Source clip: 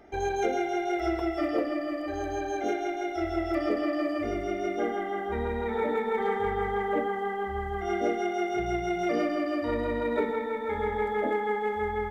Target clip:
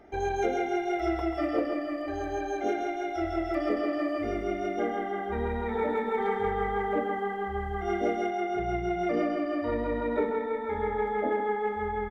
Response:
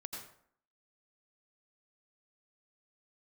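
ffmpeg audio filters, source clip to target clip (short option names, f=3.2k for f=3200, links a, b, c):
-af "asetnsamples=n=441:p=0,asendcmd='8.3 highshelf g -11.5',highshelf=f=3.1k:g=-5,aecho=1:1:137:0.335"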